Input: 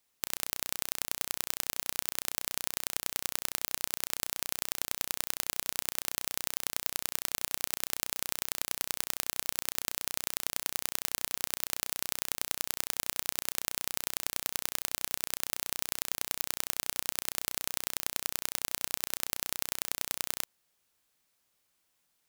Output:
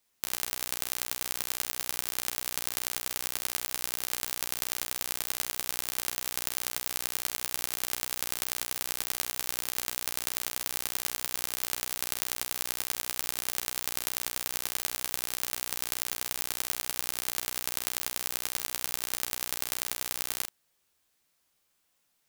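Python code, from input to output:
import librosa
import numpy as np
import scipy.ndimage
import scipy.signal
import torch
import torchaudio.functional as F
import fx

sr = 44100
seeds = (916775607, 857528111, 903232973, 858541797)

y = fx.room_early_taps(x, sr, ms=(13, 48), db=(-6.0, -6.5))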